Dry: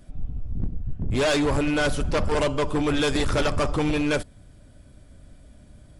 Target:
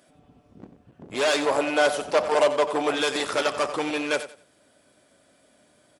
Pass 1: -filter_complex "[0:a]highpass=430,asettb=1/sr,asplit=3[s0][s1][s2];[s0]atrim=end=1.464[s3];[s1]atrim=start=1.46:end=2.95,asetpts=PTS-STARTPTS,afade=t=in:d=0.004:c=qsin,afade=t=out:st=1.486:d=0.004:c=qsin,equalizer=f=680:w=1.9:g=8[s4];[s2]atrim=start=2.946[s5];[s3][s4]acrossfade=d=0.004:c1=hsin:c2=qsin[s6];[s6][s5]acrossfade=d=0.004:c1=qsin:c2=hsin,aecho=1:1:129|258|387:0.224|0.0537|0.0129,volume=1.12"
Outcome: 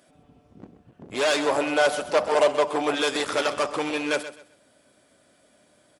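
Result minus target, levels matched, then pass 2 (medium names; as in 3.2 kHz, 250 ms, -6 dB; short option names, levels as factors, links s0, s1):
echo 39 ms late
-filter_complex "[0:a]highpass=430,asettb=1/sr,asplit=3[s0][s1][s2];[s0]atrim=end=1.464[s3];[s1]atrim=start=1.46:end=2.95,asetpts=PTS-STARTPTS,afade=t=in:d=0.004:c=qsin,afade=t=out:st=1.486:d=0.004:c=qsin,equalizer=f=680:w=1.9:g=8[s4];[s2]atrim=start=2.946[s5];[s3][s4]acrossfade=d=0.004:c1=hsin:c2=qsin[s6];[s6][s5]acrossfade=d=0.004:c1=qsin:c2=hsin,aecho=1:1:90|180|270:0.224|0.0537|0.0129,volume=1.12"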